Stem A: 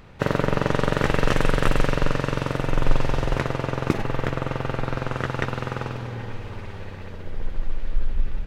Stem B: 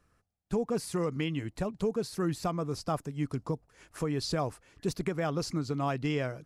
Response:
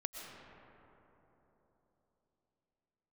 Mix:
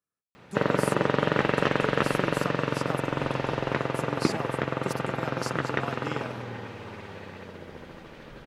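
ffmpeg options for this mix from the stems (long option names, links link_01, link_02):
-filter_complex "[0:a]acrossover=split=4600[link_01][link_02];[link_02]acompressor=threshold=-59dB:ratio=4:attack=1:release=60[link_03];[link_01][link_03]amix=inputs=2:normalize=0,adelay=350,volume=-1dB[link_04];[1:a]agate=range=-17dB:threshold=-58dB:ratio=16:detection=peak,highshelf=frequency=5700:gain=10.5,volume=-5.5dB[link_05];[link_04][link_05]amix=inputs=2:normalize=0,highpass=160"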